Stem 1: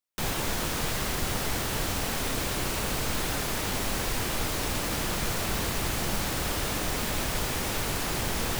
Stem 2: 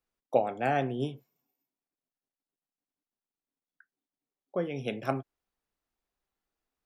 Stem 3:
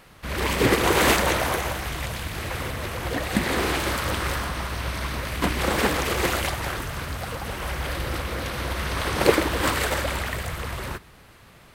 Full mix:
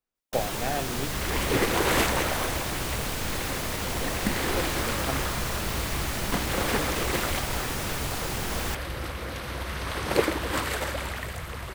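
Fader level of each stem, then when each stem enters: -2.0 dB, -3.0 dB, -5.0 dB; 0.15 s, 0.00 s, 0.90 s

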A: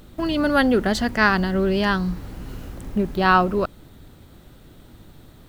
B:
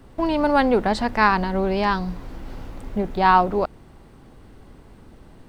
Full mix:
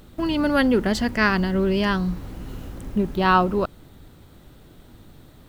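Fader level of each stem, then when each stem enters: -1.5 dB, -11.0 dB; 0.00 s, 0.00 s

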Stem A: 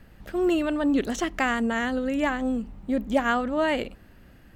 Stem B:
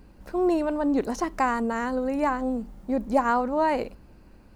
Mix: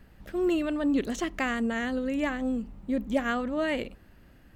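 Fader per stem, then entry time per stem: -4.0 dB, -14.5 dB; 0.00 s, 0.00 s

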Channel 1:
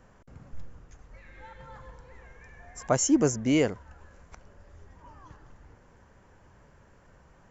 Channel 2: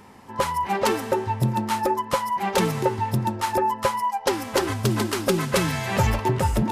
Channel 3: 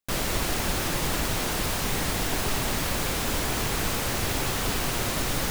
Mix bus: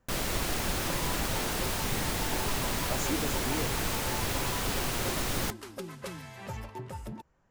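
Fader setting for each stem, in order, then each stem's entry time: -13.0 dB, -18.5 dB, -4.0 dB; 0.00 s, 0.50 s, 0.00 s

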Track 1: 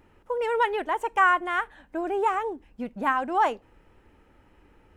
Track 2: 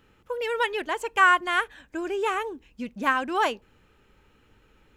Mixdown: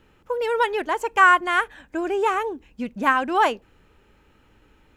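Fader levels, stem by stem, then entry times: -4.5 dB, +1.0 dB; 0.00 s, 0.00 s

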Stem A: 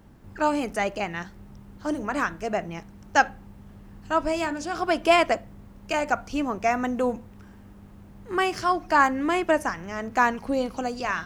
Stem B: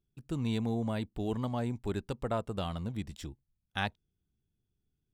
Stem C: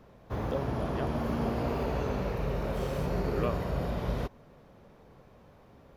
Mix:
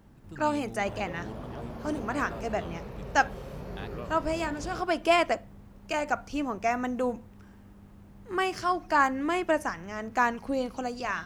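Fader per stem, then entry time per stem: -4.0 dB, -10.5 dB, -9.0 dB; 0.00 s, 0.00 s, 0.55 s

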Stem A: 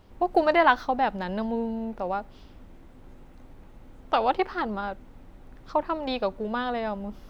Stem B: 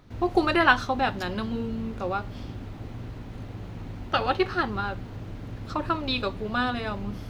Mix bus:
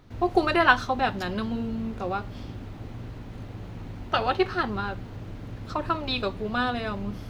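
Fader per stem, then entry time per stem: -10.0 dB, -0.5 dB; 0.00 s, 0.00 s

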